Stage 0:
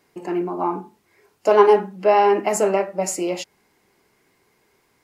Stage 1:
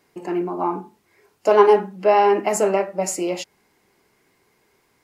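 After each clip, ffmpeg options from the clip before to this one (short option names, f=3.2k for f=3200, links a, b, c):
-af anull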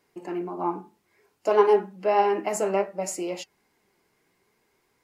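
-af "flanger=delay=1.9:depth=4.8:regen=79:speed=0.6:shape=triangular,volume=-2dB"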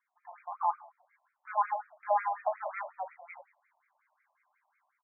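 -filter_complex "[0:a]dynaudnorm=f=270:g=3:m=9.5dB,asplit=5[a][b][c][d][e];[b]adelay=104,afreqshift=-100,volume=-22dB[f];[c]adelay=208,afreqshift=-200,volume=-26.9dB[g];[d]adelay=312,afreqshift=-300,volume=-31.8dB[h];[e]adelay=416,afreqshift=-400,volume=-36.6dB[i];[a][f][g][h][i]amix=inputs=5:normalize=0,afftfilt=real='re*between(b*sr/1024,780*pow(1800/780,0.5+0.5*sin(2*PI*5.5*pts/sr))/1.41,780*pow(1800/780,0.5+0.5*sin(2*PI*5.5*pts/sr))*1.41)':imag='im*between(b*sr/1024,780*pow(1800/780,0.5+0.5*sin(2*PI*5.5*pts/sr))/1.41,780*pow(1800/780,0.5+0.5*sin(2*PI*5.5*pts/sr))*1.41)':win_size=1024:overlap=0.75,volume=-8dB"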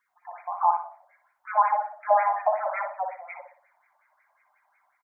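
-filter_complex "[0:a]asplit=2[a][b];[b]adelay=60,lowpass=f=1.4k:p=1,volume=-5dB,asplit=2[c][d];[d]adelay=60,lowpass=f=1.4k:p=1,volume=0.4,asplit=2[e][f];[f]adelay=60,lowpass=f=1.4k:p=1,volume=0.4,asplit=2[g][h];[h]adelay=60,lowpass=f=1.4k:p=1,volume=0.4,asplit=2[i][j];[j]adelay=60,lowpass=f=1.4k:p=1,volume=0.4[k];[a][c][e][g][i][k]amix=inputs=6:normalize=0,volume=7.5dB"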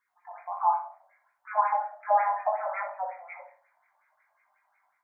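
-af "flanger=delay=19:depth=3:speed=0.66"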